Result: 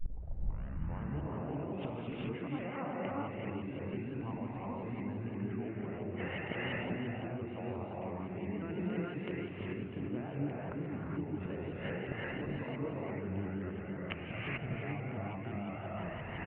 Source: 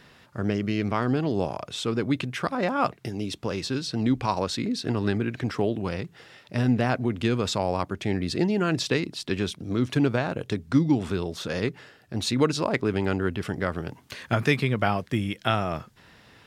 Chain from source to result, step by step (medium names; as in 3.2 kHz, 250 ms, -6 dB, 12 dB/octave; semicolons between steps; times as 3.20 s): tape start-up on the opening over 1.13 s; bass shelf 270 Hz +8 dB; in parallel at 0 dB: gain riding 0.5 s; on the sum: peak limiter -8.5 dBFS, peak gain reduction 9 dB; rippled Chebyshev low-pass 2.9 kHz, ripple 6 dB; inverted gate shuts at -27 dBFS, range -25 dB; on a send: delay 348 ms -8.5 dB; on the sum: gated-style reverb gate 460 ms rising, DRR -5.5 dB; vibrato with a chosen wave saw up 5.8 Hz, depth 100 cents; trim +2 dB